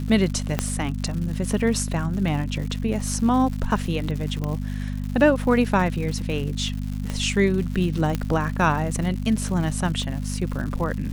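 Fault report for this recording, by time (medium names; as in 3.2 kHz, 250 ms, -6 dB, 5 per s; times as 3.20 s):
crackle 190 per s -31 dBFS
hum 50 Hz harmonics 5 -28 dBFS
0.59 s: pop -7 dBFS
4.44 s: pop -16 dBFS
7.10 s: pop -15 dBFS
8.15 s: pop -11 dBFS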